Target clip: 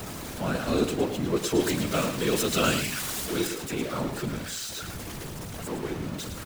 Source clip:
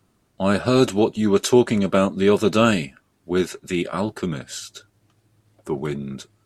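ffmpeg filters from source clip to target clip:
-filter_complex "[0:a]aeval=exprs='val(0)+0.5*0.1*sgn(val(0))':c=same,asettb=1/sr,asplit=3[s0][s1][s2];[s0]atrim=end=1.604[s3];[s1]atrim=start=1.6:end=3.47,asetpts=PTS-STARTPTS,afade=t=in:d=0.004:c=qsin,afade=t=out:st=1.866:d=0.004:c=qsin,highshelf=f=2100:g=10.5[s4];[s2]atrim=start=3.466[s5];[s3][s4]acrossfade=d=0.004:c1=hsin:c2=qsin[s6];[s6][s5]acrossfade=d=0.004:c1=qsin:c2=hsin,afftfilt=real='hypot(re,im)*cos(2*PI*random(0))':imag='hypot(re,im)*sin(2*PI*random(1))':win_size=512:overlap=0.75,aecho=1:1:110:0.355,volume=0.531"

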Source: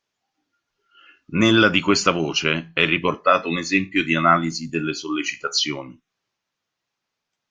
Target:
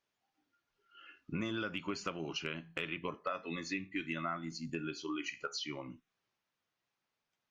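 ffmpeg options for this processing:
-af "acompressor=threshold=0.0282:ratio=5,asoftclip=type=hard:threshold=0.106,bass=f=250:g=0,treble=f=4000:g=-5,volume=0.531"

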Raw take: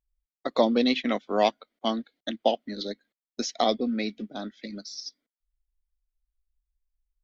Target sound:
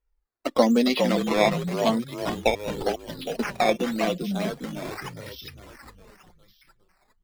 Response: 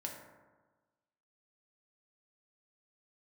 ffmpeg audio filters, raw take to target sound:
-filter_complex "[0:a]asplit=2[s0][s1];[s1]asplit=6[s2][s3][s4][s5][s6][s7];[s2]adelay=407,afreqshift=-38,volume=0.531[s8];[s3]adelay=814,afreqshift=-76,volume=0.266[s9];[s4]adelay=1221,afreqshift=-114,volume=0.133[s10];[s5]adelay=1628,afreqshift=-152,volume=0.0661[s11];[s6]adelay=2035,afreqshift=-190,volume=0.0331[s12];[s7]adelay=2442,afreqshift=-228,volume=0.0166[s13];[s8][s9][s10][s11][s12][s13]amix=inputs=6:normalize=0[s14];[s0][s14]amix=inputs=2:normalize=0,acrusher=samples=10:mix=1:aa=0.000001:lfo=1:lforange=10:lforate=0.88,acrossover=split=5600[s15][s16];[s16]acompressor=threshold=0.00631:ratio=4:attack=1:release=60[s17];[s15][s17]amix=inputs=2:normalize=0,flanger=delay=2.1:depth=3.9:regen=37:speed=0.38:shape=sinusoidal,volume=2"

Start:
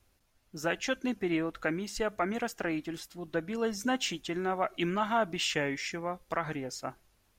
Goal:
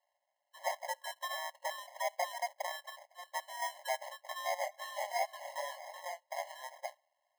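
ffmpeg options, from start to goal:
-filter_complex "[0:a]highshelf=f=3300:g=-9.5,acrusher=samples=31:mix=1:aa=0.000001,asettb=1/sr,asplit=3[s0][s1][s2];[s0]atrim=end=4.554[s3];[s1]atrim=start=4.55:end=6.64,asetpts=PTS-STARTPTS,afade=t=in:d=0.004:c=qsin,afade=t=out:st=2.086:d=0.004:c=qsin,flanger=delay=19:depth=5.9:speed=2.7[s4];[s2]atrim=start=6.636[s5];[s3][s4]acrossfade=d=0.004:c1=hsin:c2=qsin[s6];[s6][s5]acrossfade=d=0.004:c1=qsin:c2=hsin,afftfilt=real='re*eq(mod(floor(b*sr/1024/550),2),1)':imag='im*eq(mod(floor(b*sr/1024/550),2),1)':win_size=1024:overlap=0.75"

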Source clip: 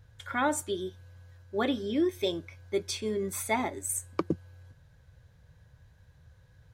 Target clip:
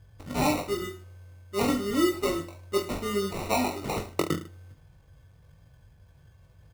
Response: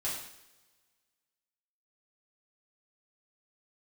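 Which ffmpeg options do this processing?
-filter_complex "[0:a]acrusher=samples=27:mix=1:aa=0.000001,aecho=1:1:20|44|72.8|107.4|148.8:0.631|0.398|0.251|0.158|0.1,asplit=2[s0][s1];[1:a]atrim=start_sample=2205[s2];[s1][s2]afir=irnorm=-1:irlink=0,volume=0.0631[s3];[s0][s3]amix=inputs=2:normalize=0"

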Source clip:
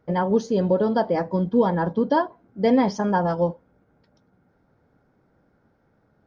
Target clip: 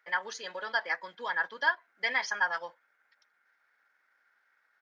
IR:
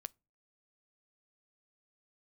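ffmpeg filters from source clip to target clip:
-af "highpass=f=1800:t=q:w=3,atempo=1.3"

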